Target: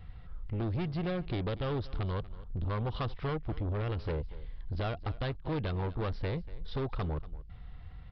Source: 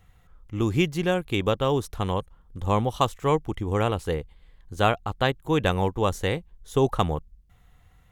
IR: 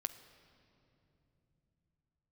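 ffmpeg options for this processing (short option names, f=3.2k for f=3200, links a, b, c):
-filter_complex "[0:a]lowshelf=f=210:g=9,acompressor=threshold=-26dB:ratio=4,asoftclip=type=tanh:threshold=-32.5dB,asplit=2[a][b];[b]aecho=0:1:238:0.126[c];[a][c]amix=inputs=2:normalize=0,aresample=11025,aresample=44100,volume=2.5dB"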